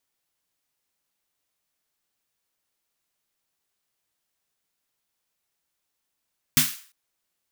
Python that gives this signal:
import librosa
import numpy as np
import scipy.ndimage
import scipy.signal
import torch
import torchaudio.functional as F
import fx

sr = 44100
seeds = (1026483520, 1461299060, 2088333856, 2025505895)

y = fx.drum_snare(sr, seeds[0], length_s=0.35, hz=150.0, second_hz=250.0, noise_db=6.0, noise_from_hz=1300.0, decay_s=0.21, noise_decay_s=0.43)